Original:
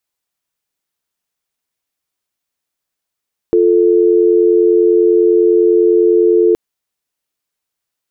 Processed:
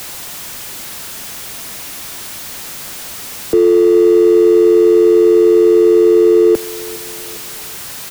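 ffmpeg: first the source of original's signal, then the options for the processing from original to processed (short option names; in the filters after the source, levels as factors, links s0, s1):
-f lavfi -i "aevalsrc='0.316*(sin(2*PI*350*t)+sin(2*PI*440*t))':d=3.02:s=44100"
-filter_complex "[0:a]aeval=exprs='val(0)+0.5*0.0794*sgn(val(0))':c=same,acrossover=split=100|200|280[s0][s1][s2][s3];[s1]acompressor=mode=upward:threshold=0.00708:ratio=2.5[s4];[s0][s4][s2][s3]amix=inputs=4:normalize=0,aecho=1:1:409|818|1227:0.075|0.0367|0.018"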